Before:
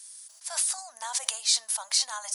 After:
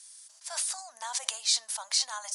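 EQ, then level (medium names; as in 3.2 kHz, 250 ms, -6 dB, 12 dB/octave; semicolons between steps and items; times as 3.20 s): low-pass 9 kHz 12 dB/octave; -1.5 dB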